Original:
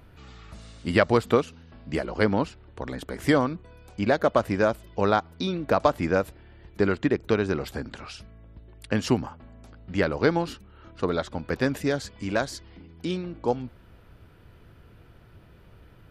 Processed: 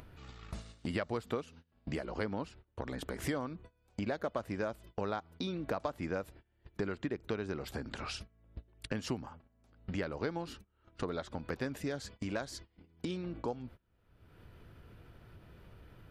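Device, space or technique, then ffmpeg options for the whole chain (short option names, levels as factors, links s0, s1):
upward and downward compression: -af "agate=range=0.0398:threshold=0.00794:ratio=16:detection=peak,acompressor=mode=upward:threshold=0.0447:ratio=2.5,acompressor=threshold=0.0282:ratio=3,volume=0.596"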